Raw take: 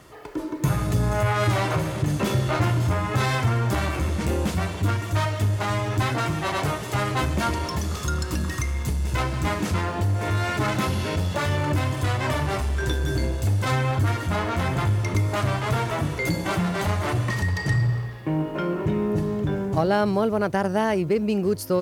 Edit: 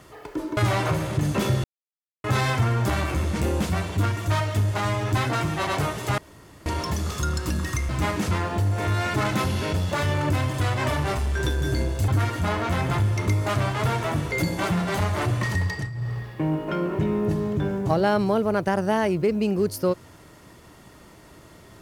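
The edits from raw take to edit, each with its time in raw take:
0:00.57–0:01.42: remove
0:02.49–0:03.09: silence
0:07.03–0:07.51: fill with room tone
0:08.74–0:09.32: remove
0:13.51–0:13.95: remove
0:17.53–0:18.05: duck −13.5 dB, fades 0.24 s

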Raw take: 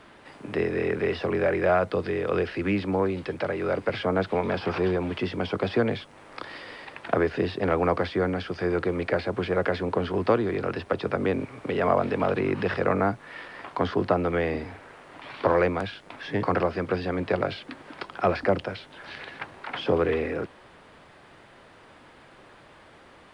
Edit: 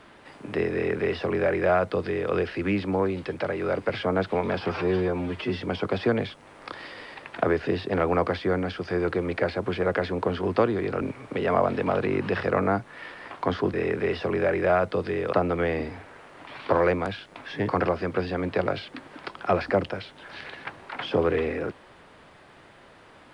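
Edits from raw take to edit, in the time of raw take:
0:00.73–0:02.32: duplicate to 0:14.07
0:04.72–0:05.31: time-stretch 1.5×
0:10.72–0:11.35: remove

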